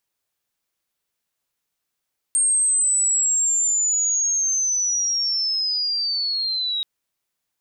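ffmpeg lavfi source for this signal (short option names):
-f lavfi -i "aevalsrc='pow(10,(-15.5-6*t/4.48)/20)*sin(2*PI*(8600*t-4800*t*t/(2*4.48)))':d=4.48:s=44100"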